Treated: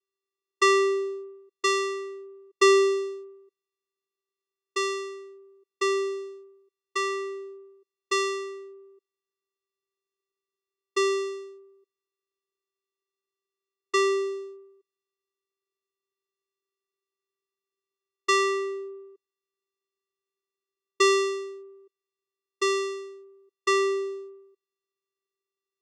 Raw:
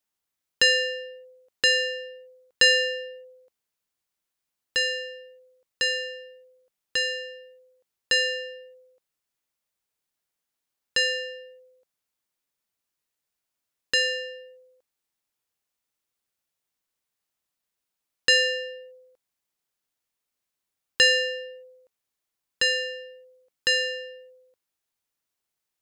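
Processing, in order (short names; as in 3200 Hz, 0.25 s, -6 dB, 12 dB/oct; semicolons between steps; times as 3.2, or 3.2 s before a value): moving spectral ripple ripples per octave 0.69, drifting -0.61 Hz, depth 7 dB; vocoder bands 4, square 391 Hz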